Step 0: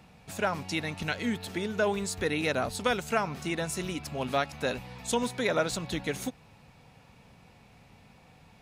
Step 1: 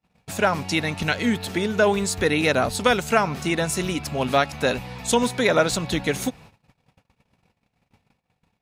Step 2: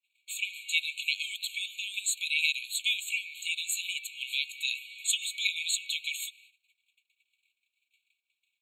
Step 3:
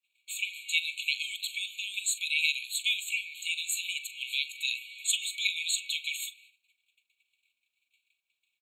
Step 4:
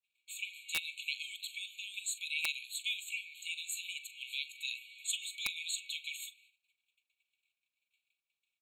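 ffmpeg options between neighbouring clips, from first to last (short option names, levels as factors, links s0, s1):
-af "agate=range=0.0126:threshold=0.00251:ratio=16:detection=peak,volume=2.66"
-af "afftfilt=real='re*eq(mod(floor(b*sr/1024/2200),2),1)':imag='im*eq(mod(floor(b*sr/1024/2200),2),1)':win_size=1024:overlap=0.75"
-filter_complex "[0:a]asplit=2[s0][s1];[s1]adelay=42,volume=0.2[s2];[s0][s2]amix=inputs=2:normalize=0"
-af "aeval=exprs='(mod(4.73*val(0)+1,2)-1)/4.73':c=same,volume=0.398"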